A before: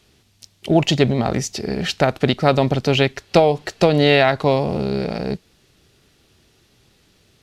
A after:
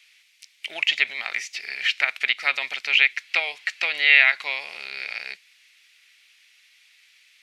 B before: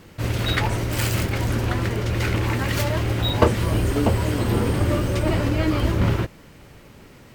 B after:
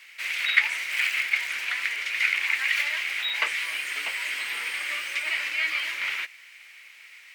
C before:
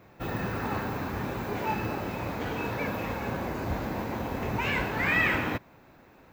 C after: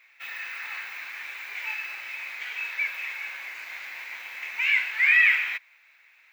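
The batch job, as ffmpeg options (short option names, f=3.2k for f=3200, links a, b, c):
-filter_complex "[0:a]acrossover=split=3300[a][b];[b]acompressor=threshold=-37dB:ratio=4:attack=1:release=60[c];[a][c]amix=inputs=2:normalize=0,highpass=f=2.2k:t=q:w=4.4,equalizer=f=14k:w=7.1:g=-11.5,volume=-1dB"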